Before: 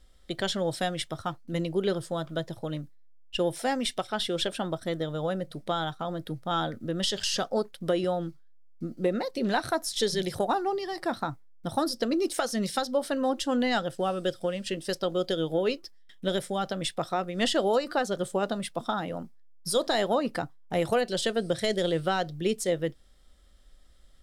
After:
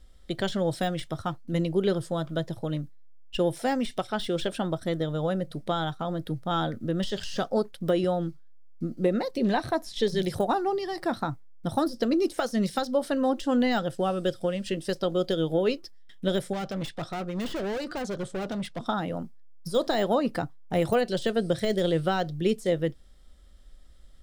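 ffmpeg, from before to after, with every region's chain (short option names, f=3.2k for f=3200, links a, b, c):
-filter_complex "[0:a]asettb=1/sr,asplit=3[a][b][c];[a]atrim=end=9.364[d];[b]atrim=start=9.36:end=10.08,asetpts=PTS-STARTPTS,afade=t=in:d=0.004:c=qsin,afade=t=out:st=0.716:d=0.004:c=qsin,bandreject=f=1.4k:w=5.6,acrossover=split=4100[e][f];[f]acompressor=threshold=-47dB:ratio=4:attack=1:release=60[g];[e][g]amix=inputs=2:normalize=0[h];[c]atrim=start=10.076[i];[d][h]acrossfade=d=0.004:c1=hsin:c2=qsin[j];[j][i]acrossfade=d=0.004:c1=qsin:c2=hsin,asettb=1/sr,asplit=3[k][l][m];[k]atrim=end=16.534[n];[l]atrim=start=16.53:end=18.86,asetpts=PTS-STARTPTS,afade=t=in:d=0.004:c=qsin,afade=t=out:st=2.326:d=0.004:c=qsin,lowpass=6.6k,asoftclip=type=hard:threshold=-31dB[o];[m]atrim=start=18.856[p];[n][o]acrossfade=d=0.004:c1=hsin:c2=qsin[q];[q][p]acrossfade=d=0.004:c1=qsin:c2=hsin,lowshelf=f=320:g=5.5,deesser=0.85"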